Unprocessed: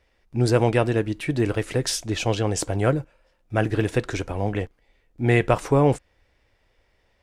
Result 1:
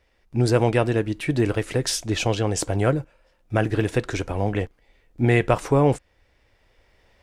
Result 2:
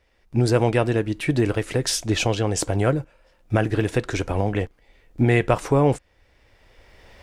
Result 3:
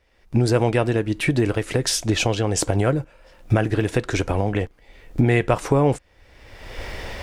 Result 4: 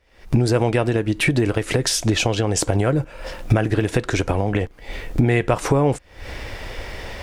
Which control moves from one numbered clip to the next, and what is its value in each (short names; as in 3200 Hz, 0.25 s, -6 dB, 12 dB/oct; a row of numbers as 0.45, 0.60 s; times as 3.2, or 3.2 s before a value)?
recorder AGC, rising by: 5.2, 14, 36, 88 dB/s